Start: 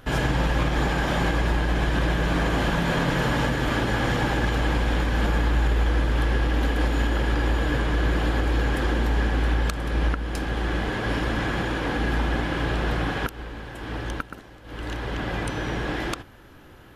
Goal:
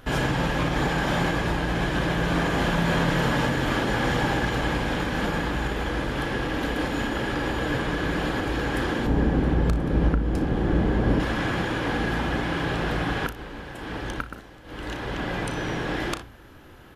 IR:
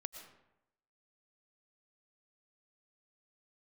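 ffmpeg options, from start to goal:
-filter_complex "[0:a]bandreject=f=56.17:t=h:w=4,bandreject=f=112.34:t=h:w=4,asettb=1/sr,asplit=3[a][b][c];[a]atrim=end=9.064[d];[b]atrim=start=9.06:end=11.2,asetpts=PTS-STARTPTS,afade=t=in:d=0.004:c=qsin,afade=t=out:st=2.136:d=0.004:c=qsin,tiltshelf=f=780:g=8.5[e];[c]atrim=start=11.196[f];[d][e]acrossfade=d=0.004:c1=hsin:c2=qsin[g];[g][f]acrossfade=d=0.004:c1=qsin:c2=hsin,aecho=1:1:35|60:0.251|0.141"

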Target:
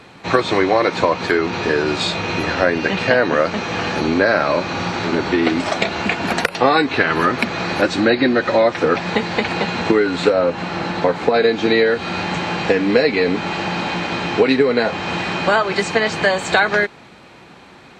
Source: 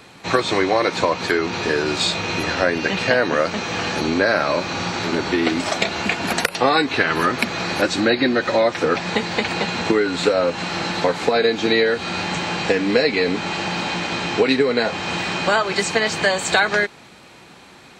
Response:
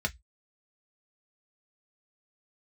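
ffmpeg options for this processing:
-af "asetnsamples=n=441:p=0,asendcmd='10.3 lowpass f 1600;11.34 lowpass f 2800',lowpass=f=3k:p=1,volume=3dB"

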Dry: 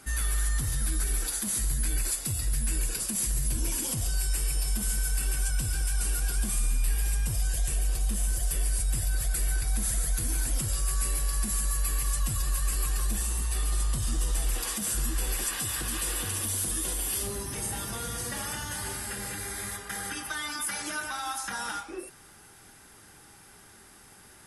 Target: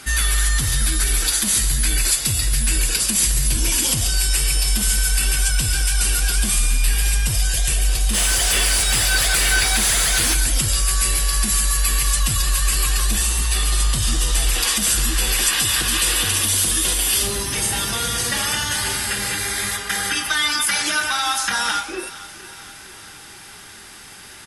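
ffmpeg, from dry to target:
-filter_complex "[0:a]equalizer=f=3.4k:t=o:w=2.3:g=10,aecho=1:1:459|918|1377|1836|2295:0.126|0.0718|0.0409|0.0233|0.0133,asplit=3[a][b][c];[a]afade=t=out:st=8.13:d=0.02[d];[b]asplit=2[e][f];[f]highpass=f=720:p=1,volume=22dB,asoftclip=type=tanh:threshold=-14.5dB[g];[e][g]amix=inputs=2:normalize=0,lowpass=f=4.2k:p=1,volume=-6dB,afade=t=in:st=8.13:d=0.02,afade=t=out:st=10.33:d=0.02[h];[c]afade=t=in:st=10.33:d=0.02[i];[d][h][i]amix=inputs=3:normalize=0,volume=8dB"

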